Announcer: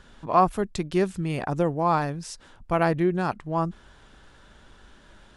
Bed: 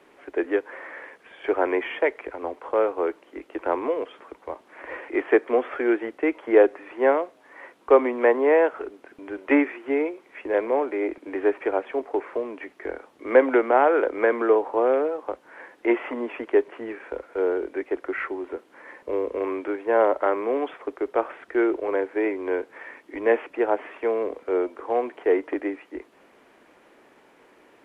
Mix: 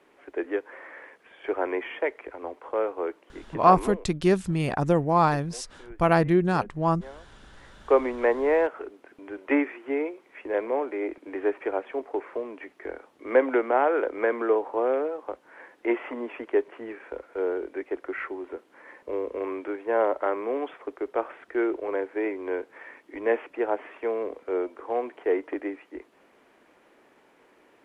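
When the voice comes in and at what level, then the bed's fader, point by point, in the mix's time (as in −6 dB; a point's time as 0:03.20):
3.30 s, +2.0 dB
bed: 0:03.88 −5 dB
0:04.12 −25 dB
0:07.38 −25 dB
0:07.83 −4 dB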